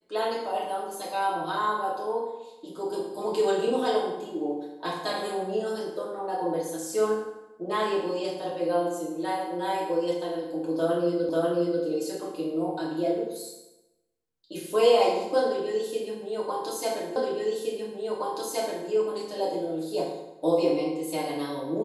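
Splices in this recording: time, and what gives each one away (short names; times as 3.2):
11.29 repeat of the last 0.54 s
17.16 repeat of the last 1.72 s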